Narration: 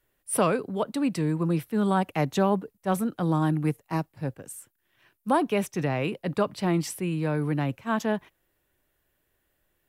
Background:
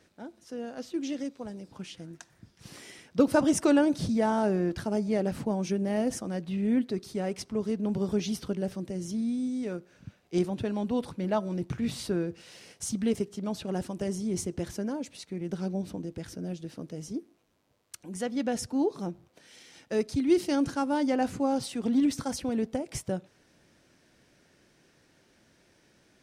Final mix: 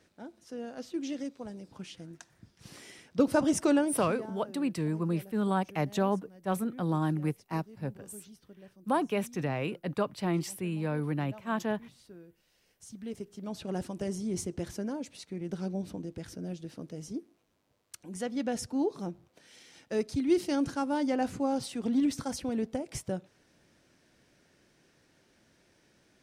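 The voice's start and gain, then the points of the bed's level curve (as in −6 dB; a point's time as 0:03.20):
3.60 s, −5.0 dB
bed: 0:03.76 −2.5 dB
0:04.36 −21.5 dB
0:12.52 −21.5 dB
0:13.69 −2.5 dB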